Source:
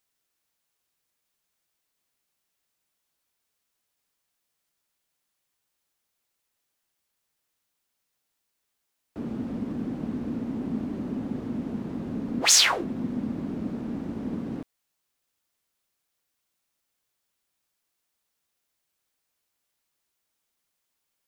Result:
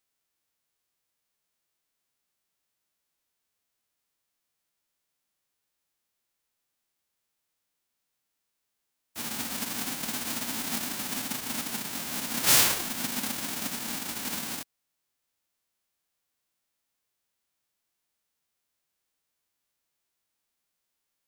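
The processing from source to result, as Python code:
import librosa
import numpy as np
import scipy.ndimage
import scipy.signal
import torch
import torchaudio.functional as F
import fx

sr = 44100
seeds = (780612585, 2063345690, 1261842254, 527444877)

y = fx.envelope_flatten(x, sr, power=0.1)
y = y * librosa.db_to_amplitude(-2.0)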